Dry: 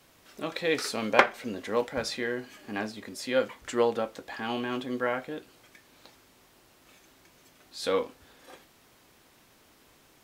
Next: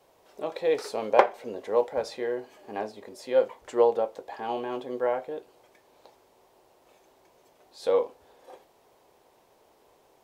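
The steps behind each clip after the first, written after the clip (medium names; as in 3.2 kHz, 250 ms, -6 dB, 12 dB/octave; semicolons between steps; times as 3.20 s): high-order bell 610 Hz +12.5 dB; trim -8 dB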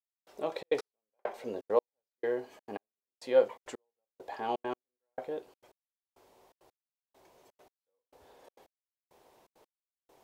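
trance gate "...xxxx.x.." 168 bpm -60 dB; trim -1.5 dB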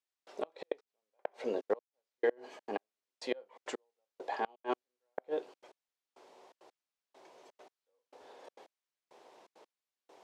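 inverted gate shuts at -23 dBFS, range -32 dB; band-pass 280–6600 Hz; trim +4.5 dB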